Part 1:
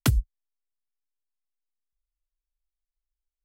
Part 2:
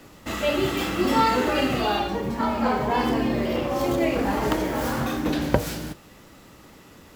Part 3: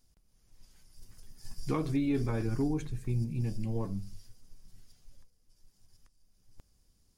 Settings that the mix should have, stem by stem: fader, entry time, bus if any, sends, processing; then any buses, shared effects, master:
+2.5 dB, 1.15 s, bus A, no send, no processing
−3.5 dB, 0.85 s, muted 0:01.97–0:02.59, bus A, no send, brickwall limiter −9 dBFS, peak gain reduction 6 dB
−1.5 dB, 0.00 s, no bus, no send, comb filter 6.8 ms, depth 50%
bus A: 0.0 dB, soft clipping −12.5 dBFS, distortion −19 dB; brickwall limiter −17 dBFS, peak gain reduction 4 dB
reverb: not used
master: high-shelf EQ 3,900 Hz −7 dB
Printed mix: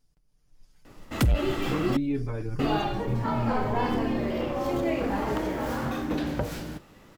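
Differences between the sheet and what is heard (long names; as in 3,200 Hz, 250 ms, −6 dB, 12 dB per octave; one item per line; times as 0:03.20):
stem 1 +2.5 dB → +10.5 dB
stem 2: missing brickwall limiter −9 dBFS, peak gain reduction 6 dB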